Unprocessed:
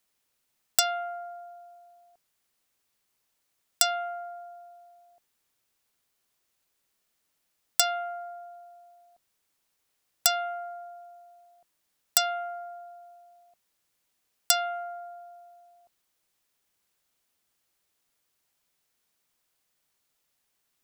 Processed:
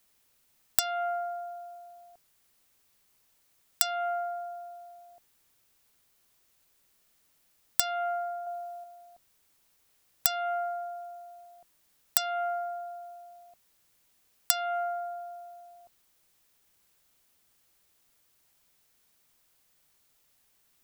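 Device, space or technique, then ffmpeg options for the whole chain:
ASMR close-microphone chain: -filter_complex "[0:a]asettb=1/sr,asplit=3[a][b][c];[a]atrim=end=8.444[d];[b]atrim=start=8.44:end=8.84,asetpts=PTS-STARTPTS,afade=t=in:d=0.004:c=qsin,afade=t=out:st=0.396:d=0.004:c=qsin,asplit=2[e][f];[f]adelay=27,volume=-2.5dB[g];[e][g]amix=inputs=2:normalize=0,atrim=end_sample=17640[h];[c]atrim=start=8.836[i];[d][h]acrossfade=d=0.004:c1=hsin:c2=qsin[j];[j][i]acrossfade=d=0.004:c1=qsin:c2=hsin,lowshelf=f=140:g=6,acompressor=threshold=-30dB:ratio=10,highshelf=f=12k:g=4.5,volume=5.5dB"

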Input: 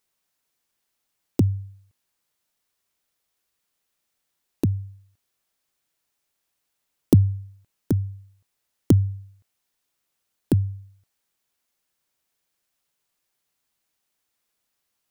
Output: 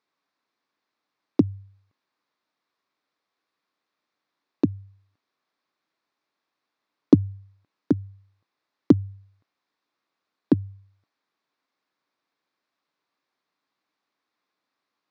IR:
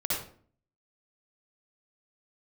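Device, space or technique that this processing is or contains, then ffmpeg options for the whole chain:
kitchen radio: -af "highpass=190,equalizer=f=290:t=q:w=4:g=6,equalizer=f=1.1k:t=q:w=4:g=6,equalizer=f=3k:t=q:w=4:g=-8,lowpass=f=4.4k:w=0.5412,lowpass=f=4.4k:w=1.3066,volume=1.5dB"

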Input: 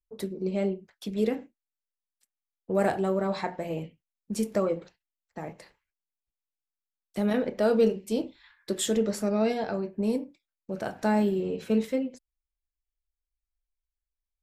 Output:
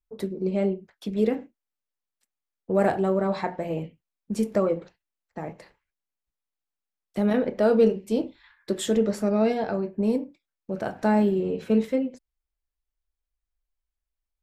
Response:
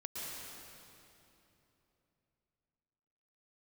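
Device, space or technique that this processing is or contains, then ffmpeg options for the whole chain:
behind a face mask: -af "highshelf=f=3.1k:g=-8,volume=3.5dB"

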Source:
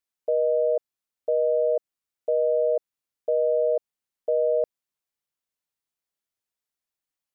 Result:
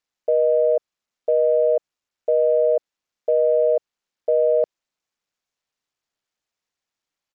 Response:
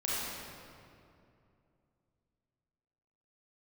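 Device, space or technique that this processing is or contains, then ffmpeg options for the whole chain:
Bluetooth headset: -af "highpass=f=250:p=1,aresample=16000,aresample=44100,volume=5.5dB" -ar 44100 -c:a sbc -b:a 64k

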